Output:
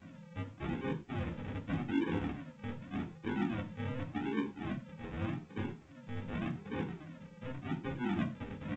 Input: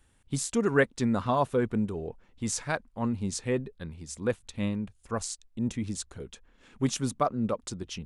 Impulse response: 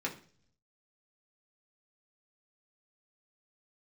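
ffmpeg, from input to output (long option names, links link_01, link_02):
-filter_complex "[0:a]areverse,acompressor=threshold=-40dB:ratio=10,areverse,alimiter=level_in=15dB:limit=-24dB:level=0:latency=1:release=241,volume=-15dB,afreqshift=150,aeval=exprs='val(0)+0.000447*sin(2*PI*580*n/s)':channel_layout=same,aresample=8000,acrusher=samples=16:mix=1:aa=0.000001:lfo=1:lforange=9.6:lforate=0.93,aresample=44100,asetrate=40517,aresample=44100[link_01];[1:a]atrim=start_sample=2205,afade=type=out:start_time=0.17:duration=0.01,atrim=end_sample=7938[link_02];[link_01][link_02]afir=irnorm=-1:irlink=0,volume=8dB" -ar 16000 -c:a pcm_alaw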